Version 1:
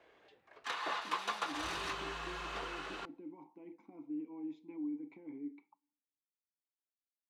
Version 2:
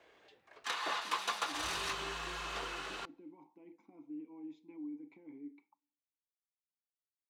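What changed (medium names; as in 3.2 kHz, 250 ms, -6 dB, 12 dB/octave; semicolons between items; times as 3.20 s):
speech -4.5 dB; master: add treble shelf 4.2 kHz +9 dB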